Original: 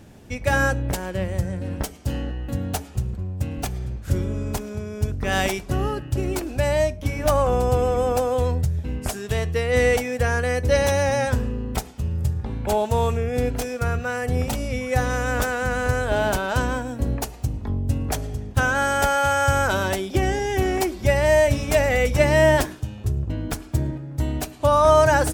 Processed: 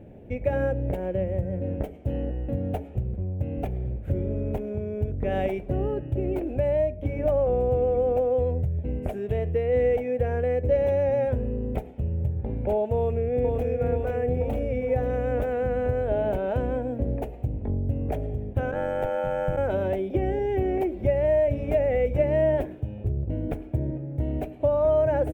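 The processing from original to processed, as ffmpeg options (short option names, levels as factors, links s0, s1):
-filter_complex "[0:a]asplit=2[s0][s1];[s1]afade=t=in:st=12.96:d=0.01,afade=t=out:st=13.67:d=0.01,aecho=0:1:480|960|1440|1920|2400|2880|3360|3840|4320:0.707946|0.424767|0.25486|0.152916|0.0917498|0.0550499|0.0330299|0.019818|0.0118908[s2];[s0][s2]amix=inputs=2:normalize=0,asplit=3[s3][s4][s5];[s3]afade=t=out:st=18.71:d=0.02[s6];[s4]aeval=exprs='val(0)*sin(2*PI*47*n/s)':c=same,afade=t=in:st=18.71:d=0.02,afade=t=out:st=19.56:d=0.02[s7];[s5]afade=t=in:st=19.56:d=0.02[s8];[s6][s7][s8]amix=inputs=3:normalize=0,firequalizer=gain_entry='entry(230,0);entry(550,6);entry(1100,-15);entry(2300,-7);entry(4700,-30);entry(8300,-27);entry(16000,-15)':delay=0.05:min_phase=1,acompressor=threshold=0.0562:ratio=2"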